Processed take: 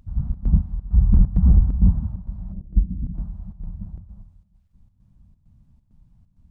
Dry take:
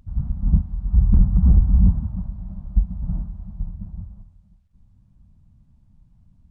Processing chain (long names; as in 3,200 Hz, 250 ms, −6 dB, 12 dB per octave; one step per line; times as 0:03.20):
0:02.52–0:03.13: low-pass with resonance 440 Hz → 270 Hz, resonance Q 4.9
square-wave tremolo 2.2 Hz, depth 65%, duty 75%